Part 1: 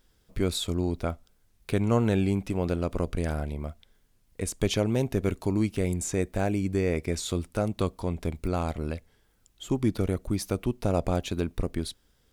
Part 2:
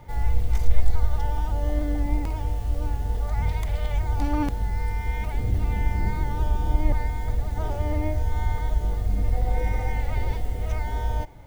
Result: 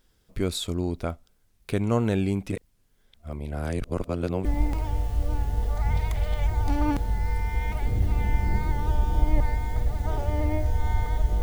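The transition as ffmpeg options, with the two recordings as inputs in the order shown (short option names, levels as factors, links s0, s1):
-filter_complex "[0:a]apad=whole_dur=11.42,atrim=end=11.42,asplit=2[s0][s1];[s0]atrim=end=2.522[s2];[s1]atrim=start=2.518:end=4.452,asetpts=PTS-STARTPTS,areverse[s3];[1:a]atrim=start=1.968:end=8.94[s4];[s2][s3]acrossfade=d=0.004:c1=hsin:c2=hsin[s5];[s5][s4]acrossfade=d=0.004:c1=hsin:c2=hsin"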